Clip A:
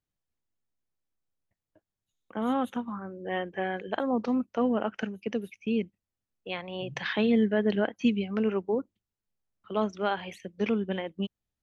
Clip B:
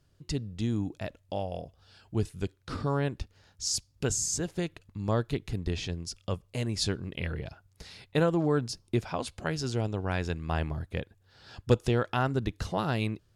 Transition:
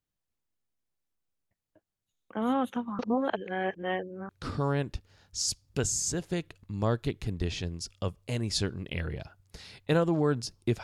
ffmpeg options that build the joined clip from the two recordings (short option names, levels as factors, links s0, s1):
-filter_complex "[0:a]apad=whole_dur=10.83,atrim=end=10.83,asplit=2[s0][s1];[s0]atrim=end=2.992[s2];[s1]atrim=start=2.988:end=4.292,asetpts=PTS-STARTPTS,areverse[s3];[1:a]atrim=start=2.548:end=9.09[s4];[s2][s3]acrossfade=d=0.004:c1=hsin:c2=hsin[s5];[s5][s4]acrossfade=d=0.004:c1=hsin:c2=hsin"